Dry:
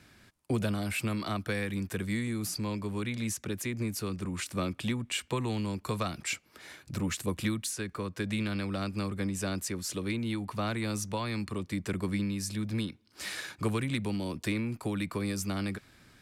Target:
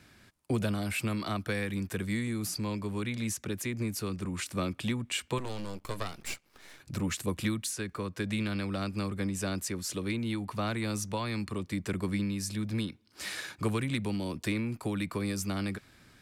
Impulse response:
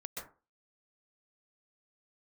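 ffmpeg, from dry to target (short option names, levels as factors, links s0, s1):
-filter_complex "[0:a]asettb=1/sr,asplit=3[s0][s1][s2];[s0]atrim=end=5.384[s3];[s1]atrim=start=5.38:end=6.8,asetpts=PTS-STARTPTS,afade=t=in:d=0.004:c=qsin,afade=t=out:st=1.416:d=0.004:c=qsin,aeval=exprs='max(val(0),0)':c=same[s4];[s2]atrim=start=6.796[s5];[s3][s4]acrossfade=d=0.004:c1=hsin:c2=qsin[s6];[s6][s5]acrossfade=d=0.004:c1=qsin:c2=hsin"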